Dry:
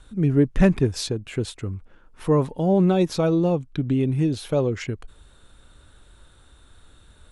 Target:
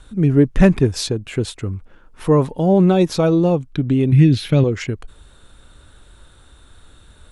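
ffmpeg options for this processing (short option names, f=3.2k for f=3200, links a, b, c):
-filter_complex "[0:a]asettb=1/sr,asplit=3[a][b][c];[a]atrim=end=4.124[d];[b]atrim=start=4.12:end=4.64,asetpts=PTS-STARTPTS,afade=t=in:d=0.004:c=qsin,afade=t=out:st=0.516:d=0.004:c=qsin,equalizer=f=125:t=o:w=1:g=8,equalizer=f=250:t=o:w=1:g=5,equalizer=f=500:t=o:w=1:g=-5,equalizer=f=1k:t=o:w=1:g=-7,equalizer=f=2k:t=o:w=1:g=9,equalizer=f=4k:t=o:w=1:g=4,equalizer=f=8k:t=o:w=1:g=-5[e];[c]atrim=start=4.636[f];[d][e]acrossfade=d=0.004:c1=hsin:c2=qsin[g];[g][f]acrossfade=d=0.004:c1=qsin:c2=hsin,volume=5dB"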